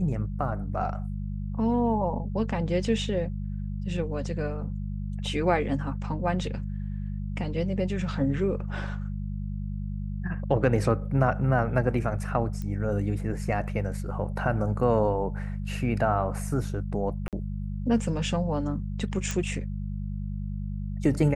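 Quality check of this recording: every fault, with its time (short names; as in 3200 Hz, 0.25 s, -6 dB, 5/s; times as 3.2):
hum 50 Hz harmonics 4 -32 dBFS
12.62 pop -23 dBFS
17.28–17.33 gap 47 ms
19.31 pop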